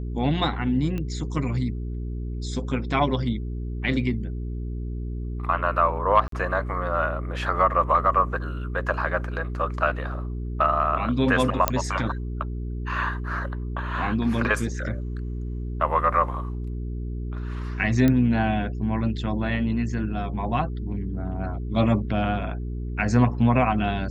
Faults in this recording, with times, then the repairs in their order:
hum 60 Hz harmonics 7 -30 dBFS
0.98 s: pop -19 dBFS
6.28–6.32 s: dropout 43 ms
11.68 s: pop -3 dBFS
18.08 s: pop -10 dBFS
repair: de-click; de-hum 60 Hz, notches 7; interpolate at 6.28 s, 43 ms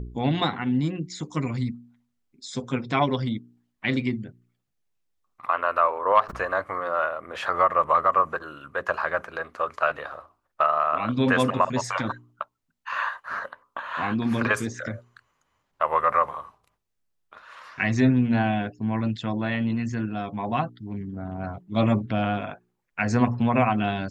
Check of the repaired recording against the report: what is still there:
nothing left

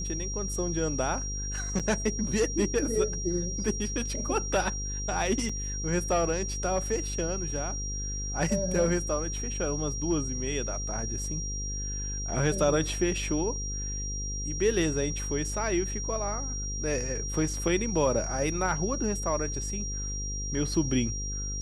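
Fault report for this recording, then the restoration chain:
buzz 50 Hz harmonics 11 -35 dBFS
whine 5.7 kHz -35 dBFS
1.79–1.80 s: dropout 6.9 ms
5.49 s: dropout 4.5 ms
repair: band-stop 5.7 kHz, Q 30; de-hum 50 Hz, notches 11; interpolate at 1.79 s, 6.9 ms; interpolate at 5.49 s, 4.5 ms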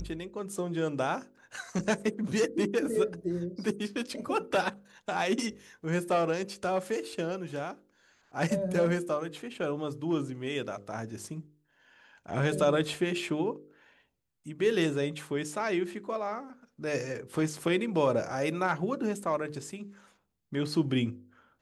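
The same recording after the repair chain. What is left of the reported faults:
nothing left

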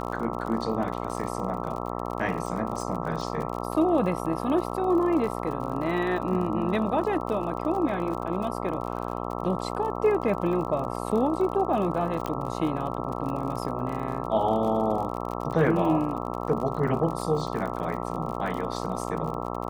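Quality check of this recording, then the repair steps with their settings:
buzz 60 Hz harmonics 22 -32 dBFS
crackle 48 per s -33 dBFS
12.26 s: pop -16 dBFS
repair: de-click; de-hum 60 Hz, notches 22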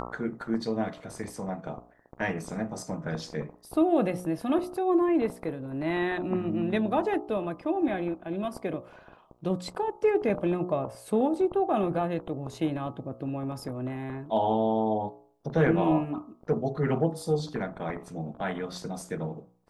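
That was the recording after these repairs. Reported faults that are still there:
nothing left

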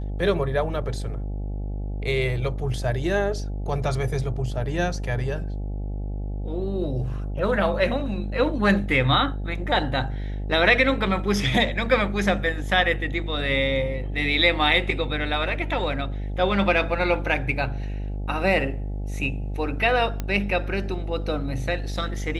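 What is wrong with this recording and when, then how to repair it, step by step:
buzz 50 Hz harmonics 17 -29 dBFS
20.20 s: pop -14 dBFS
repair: de-click; de-hum 50 Hz, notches 17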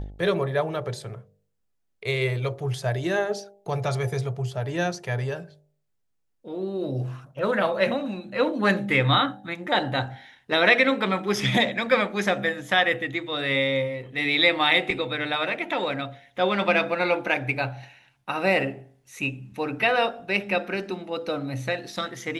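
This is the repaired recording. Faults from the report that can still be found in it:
nothing left

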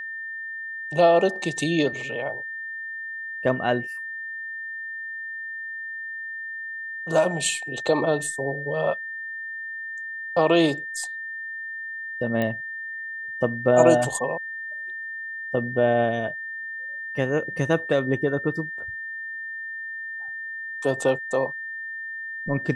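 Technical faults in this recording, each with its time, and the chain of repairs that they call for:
whine 1.8 kHz -31 dBFS
12.42 s: pop -14 dBFS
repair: de-click; band-stop 1.8 kHz, Q 30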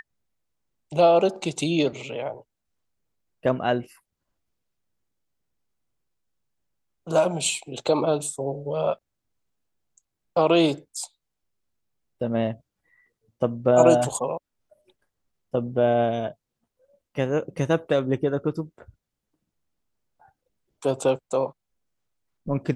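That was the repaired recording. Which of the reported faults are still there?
nothing left

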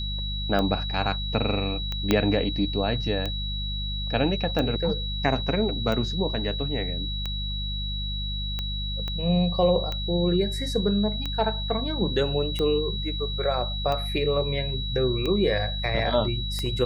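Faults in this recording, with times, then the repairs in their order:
hum 50 Hz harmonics 4 -31 dBFS
tick 45 rpm -16 dBFS
whine 3.9 kHz -32 dBFS
2.11 s: pop -7 dBFS
9.08 s: pop -19 dBFS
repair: de-click; band-stop 3.9 kHz, Q 30; de-hum 50 Hz, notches 4

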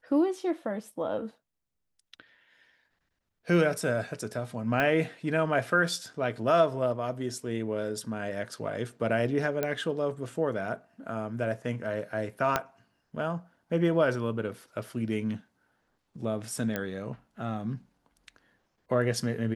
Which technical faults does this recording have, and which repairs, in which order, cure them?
4.80 s: pop -14 dBFS
9.63 s: pop -15 dBFS
12.56 s: pop -10 dBFS
16.76 s: pop -16 dBFS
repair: de-click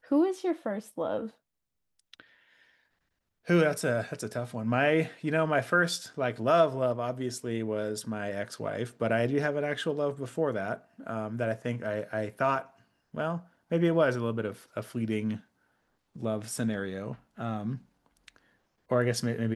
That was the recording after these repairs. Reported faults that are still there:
4.80 s: pop
12.56 s: pop

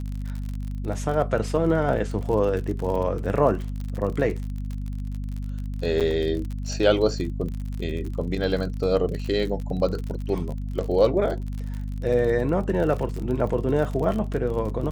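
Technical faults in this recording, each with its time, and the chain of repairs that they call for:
crackle 44 per s -30 dBFS
hum 50 Hz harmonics 5 -30 dBFS
6.00–6.01 s: dropout 7.3 ms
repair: de-click; de-hum 50 Hz, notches 5; interpolate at 6.00 s, 7.3 ms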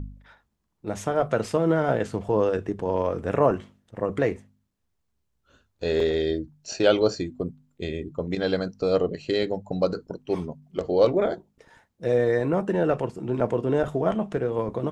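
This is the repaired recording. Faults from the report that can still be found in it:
nothing left

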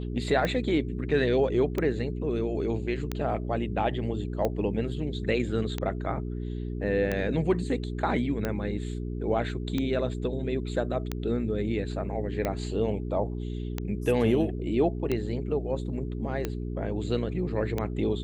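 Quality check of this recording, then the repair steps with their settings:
hum 60 Hz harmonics 7 -33 dBFS
tick 45 rpm -15 dBFS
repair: de-click; de-hum 60 Hz, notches 7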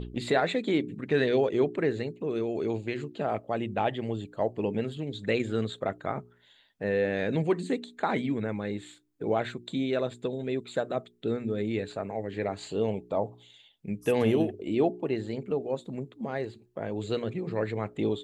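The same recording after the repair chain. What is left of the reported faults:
nothing left

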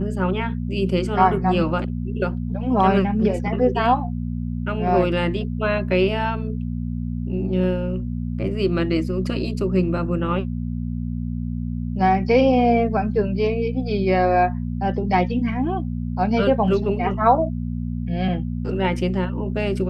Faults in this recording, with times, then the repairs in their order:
hum 60 Hz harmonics 4 -26 dBFS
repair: de-hum 60 Hz, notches 4

